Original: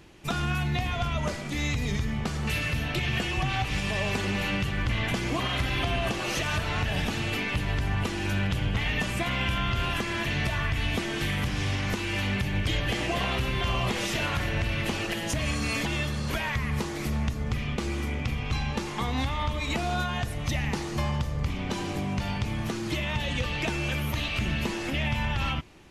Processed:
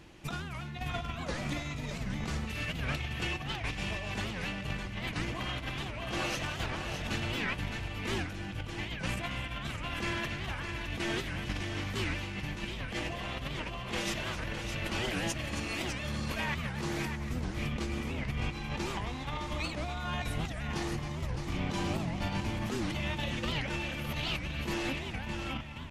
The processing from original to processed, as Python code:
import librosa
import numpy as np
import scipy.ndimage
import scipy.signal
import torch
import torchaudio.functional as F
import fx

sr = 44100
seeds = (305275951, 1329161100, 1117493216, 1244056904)

y = fx.high_shelf(x, sr, hz=9200.0, db=-4.5)
y = fx.notch(y, sr, hz=400.0, q=12.0)
y = fx.over_compress(y, sr, threshold_db=-31.0, ratio=-0.5)
y = fx.echo_multitap(y, sr, ms=(269, 612), db=(-11.0, -7.0))
y = fx.record_warp(y, sr, rpm=78.0, depth_cents=250.0)
y = F.gain(torch.from_numpy(y), -4.5).numpy()